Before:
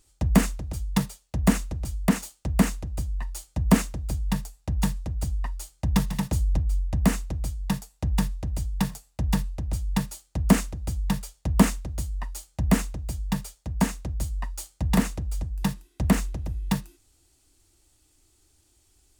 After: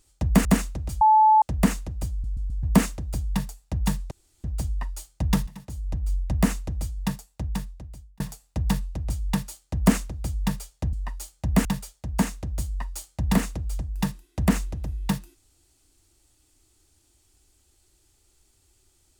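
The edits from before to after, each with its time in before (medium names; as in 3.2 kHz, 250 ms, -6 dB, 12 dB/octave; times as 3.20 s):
0.45–1.41 s: delete
1.97–2.38 s: bleep 867 Hz -12.5 dBFS
3.07 s: stutter in place 0.13 s, 4 plays
5.07 s: insert room tone 0.33 s
6.10–6.77 s: fade in quadratic, from -16 dB
7.61–8.83 s: fade out
11.56–12.08 s: delete
12.80–13.27 s: delete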